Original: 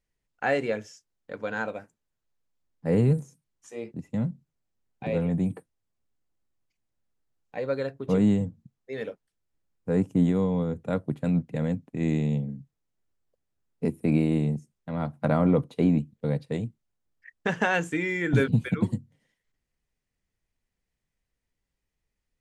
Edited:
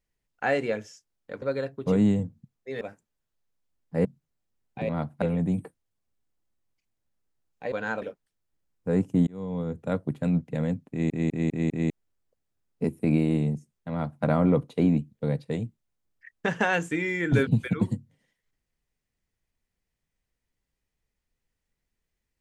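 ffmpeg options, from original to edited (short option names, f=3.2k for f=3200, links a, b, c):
-filter_complex "[0:a]asplit=14[a][b][c][d][e][f][g][h][i][j][k][l][m][n];[a]atrim=end=1.422[o];[b]atrim=start=7.638:end=9.032[p];[c]atrim=start=1.718:end=2.962[q];[d]atrim=start=4.298:end=5.142[r];[e]atrim=start=14.918:end=15.252[s];[f]atrim=start=5.138:end=7.642[t];[g]atrim=start=1.418:end=1.722[u];[h]atrim=start=9.028:end=10.28,asetpts=PTS-STARTPTS,afade=t=out:st=1.248:d=0.004:c=hsin[v];[i]atrim=start=10.28:end=12.112,asetpts=PTS-STARTPTS,afade=t=in:d=0.71:c=qsin[w];[j]atrim=start=11.908:end=12.112[x];[k]atrim=start=11.908:end=12.112[y];[l]atrim=start=11.908:end=12.112[z];[m]atrim=start=11.908:end=12.112[aa];[n]atrim=start=12.908[ab];[o][p]acrossfade=d=0.004:c1=hsin:c2=hsin[ac];[ac][q]acrossfade=d=0.004:c1=hsin:c2=hsin[ad];[ad][r]acrossfade=d=0.004:c1=hsin:c2=hsin[ae];[ae][s]acrossfade=d=0.004:c1=hsin:c2=hsin[af];[af][t]acrossfade=d=0.004:c1=hsin:c2=hsin[ag];[ag][u]acrossfade=d=0.004:c1=hsin:c2=hsin[ah];[v][w]concat=n=2:v=0:a=1[ai];[ah][ai]acrossfade=d=0.004:c1=hsin:c2=hsin[aj];[aj][x]acrossfade=d=0.004:c1=hsin:c2=hsin[ak];[ak][y]acrossfade=d=0.004:c1=hsin:c2=hsin[al];[al][z]acrossfade=d=0.004:c1=hsin:c2=hsin[am];[am][aa]acrossfade=d=0.004:c1=hsin:c2=hsin[an];[an][ab]acrossfade=d=0.004:c1=hsin:c2=hsin"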